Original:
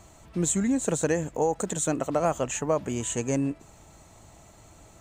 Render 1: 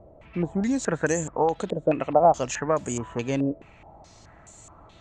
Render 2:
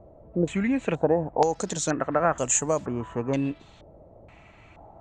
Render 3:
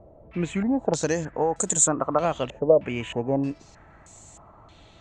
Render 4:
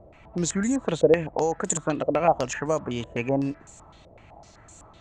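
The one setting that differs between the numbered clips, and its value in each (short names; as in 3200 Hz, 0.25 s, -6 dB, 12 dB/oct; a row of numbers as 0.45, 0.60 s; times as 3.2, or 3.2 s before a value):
stepped low-pass, rate: 4.7, 2.1, 3.2, 7.9 Hz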